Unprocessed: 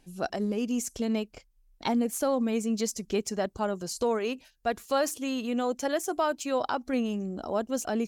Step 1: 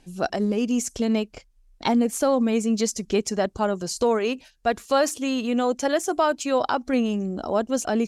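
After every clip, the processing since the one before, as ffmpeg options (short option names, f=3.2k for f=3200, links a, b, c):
-af "lowpass=10k,volume=6dB"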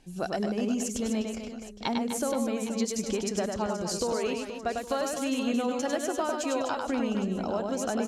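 -filter_complex "[0:a]acompressor=threshold=-24dB:ratio=6,asplit=2[a][b];[b]aecho=0:1:100|250|475|812.5|1319:0.631|0.398|0.251|0.158|0.1[c];[a][c]amix=inputs=2:normalize=0,volume=-3dB"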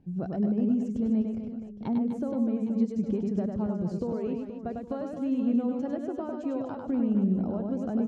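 -af "bandpass=f=140:t=q:w=1.3:csg=0,volume=8.5dB"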